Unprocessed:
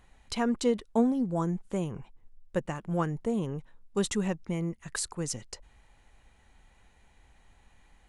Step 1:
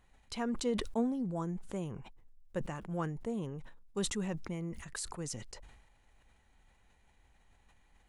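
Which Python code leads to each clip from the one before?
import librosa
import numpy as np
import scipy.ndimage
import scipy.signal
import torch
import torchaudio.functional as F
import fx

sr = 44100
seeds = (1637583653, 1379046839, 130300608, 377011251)

y = fx.sustainer(x, sr, db_per_s=52.0)
y = y * 10.0 ** (-7.5 / 20.0)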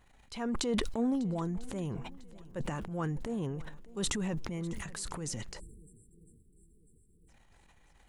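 y = fx.transient(x, sr, attack_db=-6, sustain_db=9)
y = fx.echo_swing(y, sr, ms=998, ratio=1.5, feedback_pct=35, wet_db=-20.5)
y = fx.spec_erase(y, sr, start_s=5.6, length_s=1.69, low_hz=490.0, high_hz=7400.0)
y = y * 10.0 ** (2.0 / 20.0)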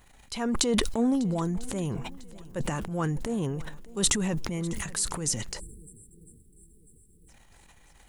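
y = fx.high_shelf(x, sr, hz=5500.0, db=9.5)
y = y * 10.0 ** (5.5 / 20.0)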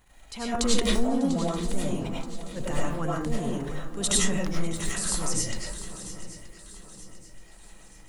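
y = fx.echo_swing(x, sr, ms=927, ratio=3, feedback_pct=42, wet_db=-14.0)
y = fx.rev_freeverb(y, sr, rt60_s=0.41, hf_ratio=0.5, predelay_ms=60, drr_db=-5.5)
y = y * 10.0 ** (-4.5 / 20.0)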